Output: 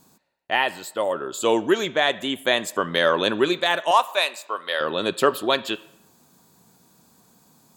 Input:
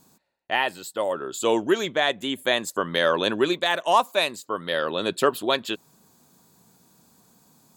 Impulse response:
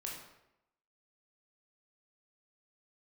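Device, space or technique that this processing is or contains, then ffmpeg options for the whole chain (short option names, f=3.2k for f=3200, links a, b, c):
filtered reverb send: -filter_complex "[0:a]asettb=1/sr,asplit=3[a][b][c];[a]atrim=end=3.914[d];[b]atrim=start=3.91:end=4.81,asetpts=PTS-STARTPTS,afade=t=in:d=0.004:c=qsin,afade=t=out:st=0.896:d=0.004:c=qsin,highpass=590[e];[c]atrim=start=4.806[f];[d][e]acrossfade=d=0.004:c1=hsin:c2=qsin[g];[g][f]acrossfade=d=0.004:c1=qsin:c2=hsin,asplit=2[h][i];[i]highpass=f=520:p=1,lowpass=5k[j];[1:a]atrim=start_sample=2205[k];[j][k]afir=irnorm=-1:irlink=0,volume=-11.5dB[l];[h][l]amix=inputs=2:normalize=0,volume=1dB"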